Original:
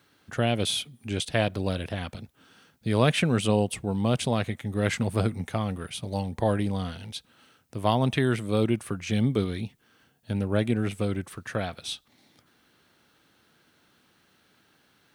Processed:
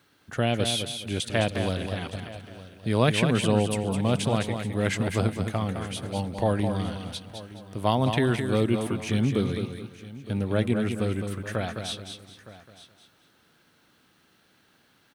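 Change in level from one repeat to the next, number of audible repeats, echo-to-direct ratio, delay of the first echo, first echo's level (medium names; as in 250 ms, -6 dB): no regular repeats, 5, -6.0 dB, 211 ms, -7.0 dB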